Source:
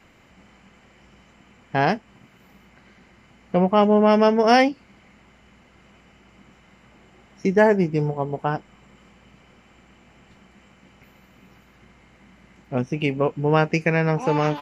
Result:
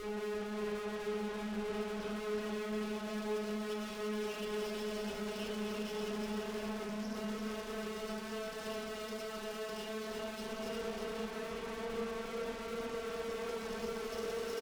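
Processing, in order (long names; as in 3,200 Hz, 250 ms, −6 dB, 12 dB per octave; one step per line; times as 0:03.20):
Chebyshev band-stop filter 540–2,900 Hz, order 4
low-shelf EQ 160 Hz −11 dB
extreme stretch with random phases 30×, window 0.25 s, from 0:03.96
time-frequency box erased 0:06.85–0:07.16, 300–5,200 Hz
tube saturation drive 47 dB, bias 0.8
single-tap delay 349 ms −4.5 dB
convolution reverb RT60 0.60 s, pre-delay 8 ms, DRR −2 dB
level +2.5 dB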